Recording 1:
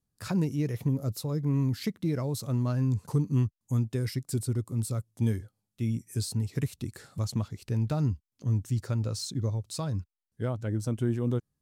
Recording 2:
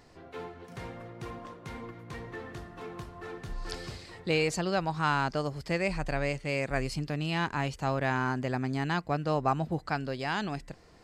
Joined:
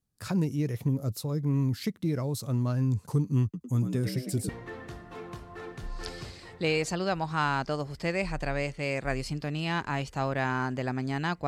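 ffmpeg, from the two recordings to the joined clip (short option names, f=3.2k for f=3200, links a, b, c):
-filter_complex "[0:a]asettb=1/sr,asplit=3[a][b][c];[a]atrim=end=3.434[d];[b]atrim=start=3.43:end=4.49,asetpts=PTS-STARTPTS,afade=t=in:d=0.004:c=qsin,afade=t=out:st=1.056:d=0.004:c=qsin,asplit=7[e][f][g][h][i][j][k];[f]adelay=105,afreqshift=65,volume=-8dB[l];[g]adelay=210,afreqshift=130,volume=-14.2dB[m];[h]adelay=315,afreqshift=195,volume=-20.4dB[n];[i]adelay=420,afreqshift=260,volume=-26.6dB[o];[j]adelay=525,afreqshift=325,volume=-32.8dB[p];[k]adelay=630,afreqshift=390,volume=-39dB[q];[e][l][m][n][o][p][q]amix=inputs=7:normalize=0,atrim=end_sample=46746[r];[c]atrim=start=4.486[s];[d][r]acrossfade=d=0.004:c1=hsin:c2=qsin[t];[t][s]acrossfade=d=0.004:c1=qsin:c2=hsin,apad=whole_dur=11.47,atrim=end=11.47,atrim=end=4.492[u];[1:a]atrim=start=2.148:end=9.13[v];[u][v]acrossfade=d=0.004:c1=hsin:c2=hsin"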